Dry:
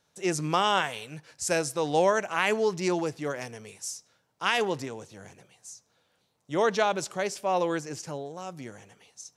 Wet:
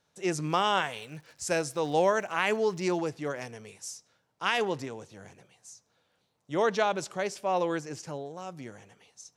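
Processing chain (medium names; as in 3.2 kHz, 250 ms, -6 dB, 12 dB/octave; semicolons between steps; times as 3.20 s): treble shelf 6.5 kHz -5.5 dB; 0.46–2.96 s: crackle 130 per s -44 dBFS; trim -1.5 dB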